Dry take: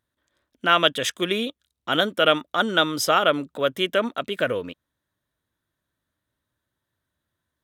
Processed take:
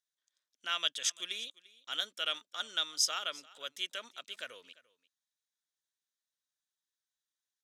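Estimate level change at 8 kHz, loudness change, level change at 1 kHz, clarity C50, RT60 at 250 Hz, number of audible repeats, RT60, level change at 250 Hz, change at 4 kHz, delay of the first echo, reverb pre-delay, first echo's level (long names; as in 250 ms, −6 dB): −1.5 dB, −12.5 dB, −20.0 dB, no reverb audible, no reverb audible, 1, no reverb audible, −33.0 dB, −9.0 dB, 345 ms, no reverb audible, −21.5 dB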